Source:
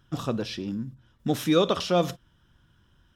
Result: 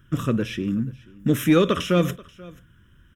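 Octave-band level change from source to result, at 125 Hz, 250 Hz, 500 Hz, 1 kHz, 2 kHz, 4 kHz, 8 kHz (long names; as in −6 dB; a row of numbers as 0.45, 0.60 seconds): +7.5, +6.5, +2.0, +0.5, +7.0, −0.5, +2.5 decibels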